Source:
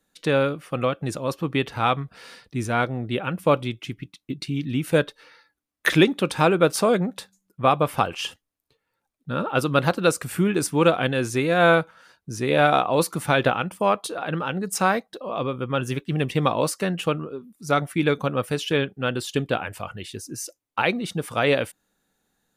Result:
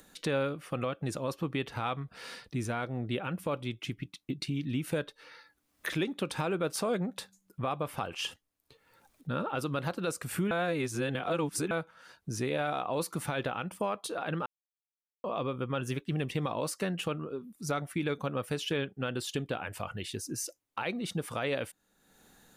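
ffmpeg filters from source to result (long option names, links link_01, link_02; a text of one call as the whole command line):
ffmpeg -i in.wav -filter_complex "[0:a]asplit=5[link_01][link_02][link_03][link_04][link_05];[link_01]atrim=end=10.512[link_06];[link_02]atrim=start=10.508:end=11.712,asetpts=PTS-STARTPTS,areverse[link_07];[link_03]atrim=start=11.708:end=14.46,asetpts=PTS-STARTPTS,afade=type=out:start_time=2.748:duration=0.004:curve=hsin[link_08];[link_04]atrim=start=14.46:end=15.24,asetpts=PTS-STARTPTS,volume=0[link_09];[link_05]atrim=start=15.24,asetpts=PTS-STARTPTS,afade=type=in:duration=0.004:curve=hsin[link_10];[link_06][link_07]acrossfade=duration=0.004:curve1=hsin:curve2=hsin[link_11];[link_08][link_09][link_10]concat=n=3:v=0:a=1[link_12];[link_11][link_12]acrossfade=duration=0.004:curve1=hsin:curve2=hsin,acompressor=threshold=-35dB:ratio=2,alimiter=limit=-21.5dB:level=0:latency=1:release=41,acompressor=mode=upward:threshold=-48dB:ratio=2.5" out.wav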